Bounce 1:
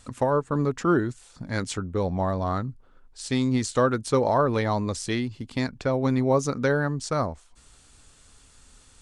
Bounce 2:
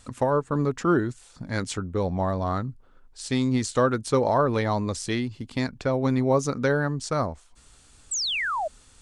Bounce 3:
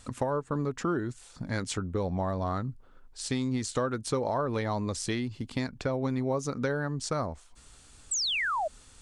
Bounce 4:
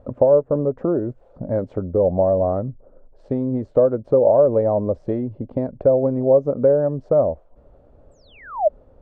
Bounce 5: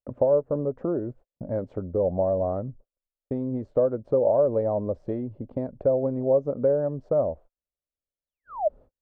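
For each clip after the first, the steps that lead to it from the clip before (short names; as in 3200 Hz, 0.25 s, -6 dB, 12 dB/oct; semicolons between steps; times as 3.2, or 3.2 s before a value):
painted sound fall, 8.11–8.68, 580–8300 Hz -27 dBFS
compressor 3:1, threshold -28 dBFS, peak gain reduction 9 dB
synth low-pass 580 Hz, resonance Q 5.7; gain +5.5 dB
gate -38 dBFS, range -44 dB; gain -6.5 dB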